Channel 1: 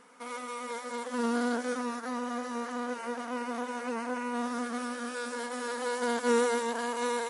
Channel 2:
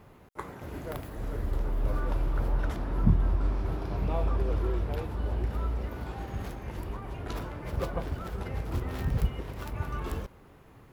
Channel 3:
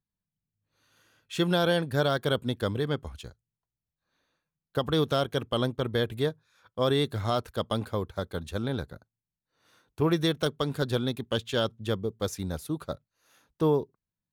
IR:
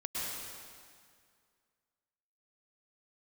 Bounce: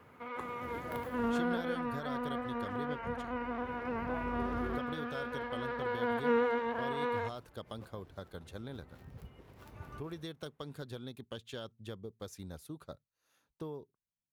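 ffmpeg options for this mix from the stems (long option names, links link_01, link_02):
-filter_complex "[0:a]lowpass=frequency=2800:width=0.5412,lowpass=frequency=2800:width=1.3066,volume=-3dB[link_01];[1:a]highpass=80,volume=-6.5dB[link_02];[2:a]acompressor=threshold=-28dB:ratio=6,volume=-11.5dB,asplit=2[link_03][link_04];[link_04]apad=whole_len=481994[link_05];[link_02][link_05]sidechaincompress=threshold=-59dB:ratio=4:attack=16:release=1250[link_06];[link_01][link_06][link_03]amix=inputs=3:normalize=0"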